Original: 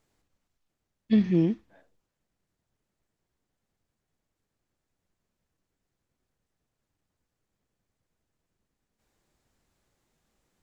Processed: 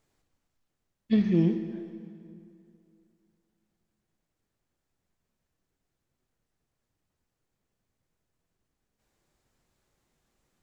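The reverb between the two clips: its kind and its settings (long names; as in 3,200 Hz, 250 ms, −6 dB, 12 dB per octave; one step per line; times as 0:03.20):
dense smooth reverb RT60 2.6 s, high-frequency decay 0.75×, DRR 7.5 dB
level −1 dB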